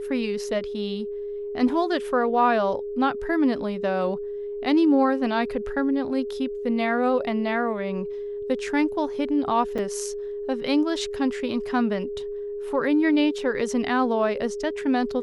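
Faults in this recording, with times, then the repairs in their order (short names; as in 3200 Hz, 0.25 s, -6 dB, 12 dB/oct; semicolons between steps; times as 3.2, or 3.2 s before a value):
tone 410 Hz -29 dBFS
9.78–9.79 gap 6.4 ms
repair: notch 410 Hz, Q 30; interpolate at 9.78, 6.4 ms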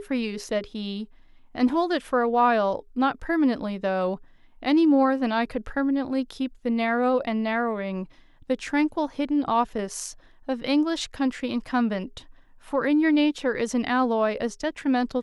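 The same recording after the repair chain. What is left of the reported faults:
none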